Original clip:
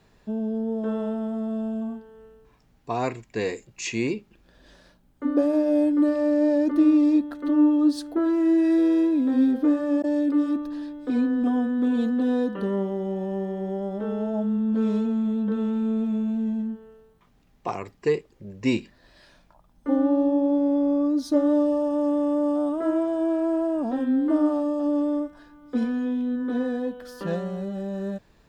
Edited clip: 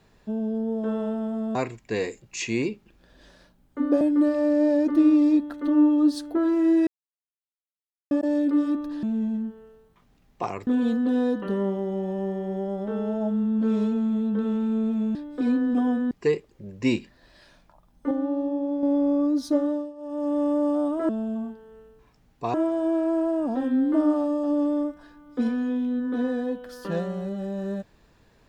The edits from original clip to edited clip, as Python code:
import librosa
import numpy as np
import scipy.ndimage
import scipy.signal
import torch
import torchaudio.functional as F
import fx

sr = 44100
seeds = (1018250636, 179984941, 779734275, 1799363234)

y = fx.edit(x, sr, fx.move(start_s=1.55, length_s=1.45, to_s=22.9),
    fx.cut(start_s=5.46, length_s=0.36),
    fx.silence(start_s=8.68, length_s=1.24),
    fx.swap(start_s=10.84, length_s=0.96, other_s=16.28, other_length_s=1.64),
    fx.clip_gain(start_s=19.92, length_s=0.72, db=-5.5),
    fx.fade_down_up(start_s=21.28, length_s=0.95, db=-20.5, fade_s=0.46), tone=tone)